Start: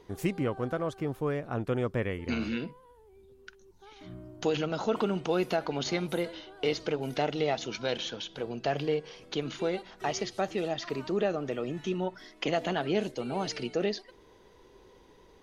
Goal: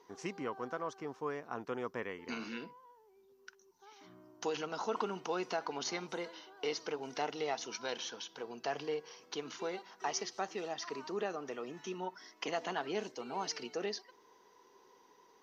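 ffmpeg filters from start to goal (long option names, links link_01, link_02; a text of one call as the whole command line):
ffmpeg -i in.wav -af "highpass=320,equalizer=frequency=330:width_type=q:width=4:gain=-4,equalizer=frequency=580:width_type=q:width=4:gain=-8,equalizer=frequency=1000:width_type=q:width=4:gain=6,equalizer=frequency=2400:width_type=q:width=4:gain=-3,equalizer=frequency=3500:width_type=q:width=4:gain=-5,equalizer=frequency=5800:width_type=q:width=4:gain=9,lowpass=frequency=6500:width=0.5412,lowpass=frequency=6500:width=1.3066,volume=-4.5dB" -ar 48000 -c:a mp2 -b:a 192k out.mp2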